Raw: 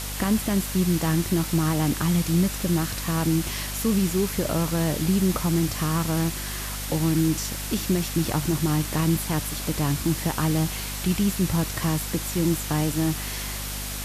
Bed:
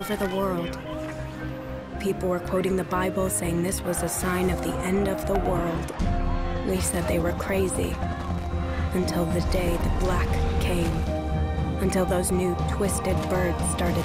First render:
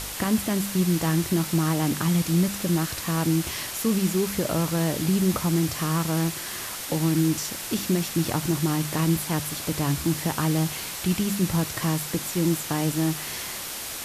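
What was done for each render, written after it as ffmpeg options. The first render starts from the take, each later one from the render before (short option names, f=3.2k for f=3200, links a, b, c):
-af "bandreject=f=50:t=h:w=4,bandreject=f=100:t=h:w=4,bandreject=f=150:t=h:w=4,bandreject=f=200:t=h:w=4,bandreject=f=250:t=h:w=4"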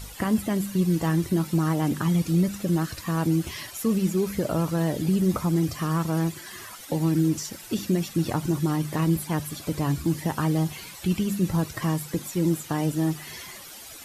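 -af "afftdn=nr=13:nf=-34"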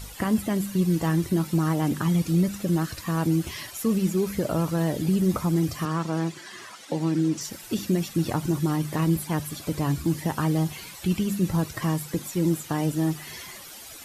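-filter_complex "[0:a]asettb=1/sr,asplit=3[a][b][c];[a]atrim=end=5.854[d];[b]atrim=start=5.85:end=7.41,asetpts=PTS-STARTPTS,afade=t=in:d=0.004:c=qsin,afade=t=out:st=1.556:d=0.004:c=qsin,highpass=170,lowpass=7k[e];[c]atrim=start=7.406[f];[d][e]acrossfade=d=0.004:c1=hsin:c2=qsin[g];[g][f]acrossfade=d=0.004:c1=qsin:c2=hsin"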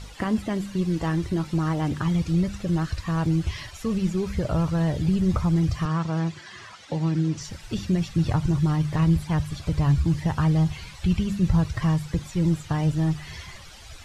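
-af "lowpass=5.5k,asubboost=boost=11.5:cutoff=81"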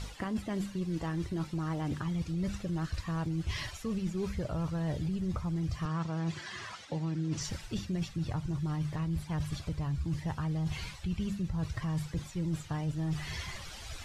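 -af "alimiter=limit=-17dB:level=0:latency=1:release=241,areverse,acompressor=threshold=-31dB:ratio=6,areverse"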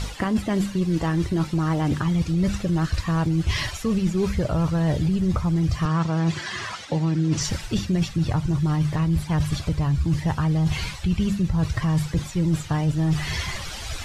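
-af "volume=11.5dB"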